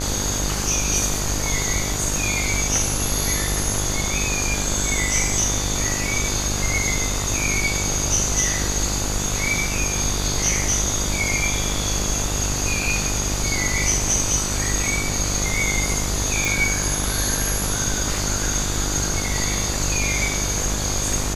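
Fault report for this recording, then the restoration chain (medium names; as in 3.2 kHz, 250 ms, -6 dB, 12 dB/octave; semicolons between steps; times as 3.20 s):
buzz 50 Hz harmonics 30 -27 dBFS
16.45 s: pop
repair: de-click; de-hum 50 Hz, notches 30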